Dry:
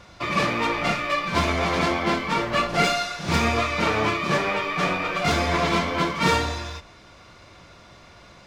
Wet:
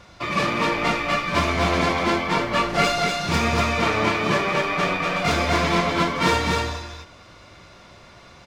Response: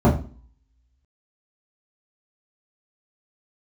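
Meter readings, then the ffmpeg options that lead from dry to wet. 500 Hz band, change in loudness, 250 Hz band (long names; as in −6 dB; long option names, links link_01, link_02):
+2.0 dB, +1.5 dB, +2.0 dB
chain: -af "aecho=1:1:242:0.668"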